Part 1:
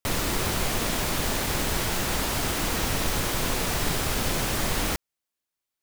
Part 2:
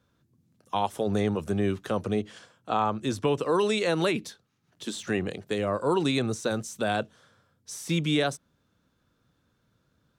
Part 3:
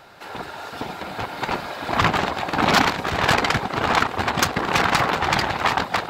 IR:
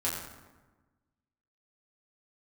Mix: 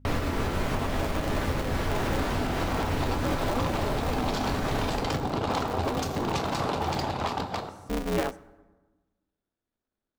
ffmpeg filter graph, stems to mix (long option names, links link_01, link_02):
-filter_complex "[0:a]highshelf=frequency=2700:gain=-10.5,aeval=exprs='val(0)+0.00141*(sin(2*PI*50*n/s)+sin(2*PI*2*50*n/s)/2+sin(2*PI*3*50*n/s)/3+sin(2*PI*4*50*n/s)/4+sin(2*PI*5*50*n/s)/5)':channel_layout=same,volume=2.5dB,asplit=2[link_01][link_02];[link_02]volume=-7dB[link_03];[1:a]afwtdn=0.0316,equalizer=frequency=440:width_type=o:width=0.77:gain=5.5,aeval=exprs='val(0)*sgn(sin(2*PI*120*n/s))':channel_layout=same,volume=-4.5dB,asplit=2[link_04][link_05];[link_05]volume=-22.5dB[link_06];[2:a]equalizer=frequency=1800:width=1:gain=-13.5,dynaudnorm=framelen=140:gausssize=9:maxgain=5dB,adelay=1600,volume=0.5dB,asplit=2[link_07][link_08];[link_08]volume=-16dB[link_09];[link_01][link_07]amix=inputs=2:normalize=0,adynamicsmooth=sensitivity=5.5:basefreq=4300,alimiter=limit=-13.5dB:level=0:latency=1:release=132,volume=0dB[link_10];[3:a]atrim=start_sample=2205[link_11];[link_03][link_06][link_09]amix=inputs=3:normalize=0[link_12];[link_12][link_11]afir=irnorm=-1:irlink=0[link_13];[link_04][link_10][link_13]amix=inputs=3:normalize=0,alimiter=limit=-18dB:level=0:latency=1:release=441"